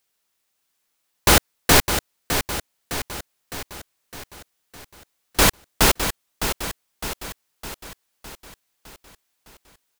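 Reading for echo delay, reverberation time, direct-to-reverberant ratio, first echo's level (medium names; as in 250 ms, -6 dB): 609 ms, no reverb, no reverb, -8.5 dB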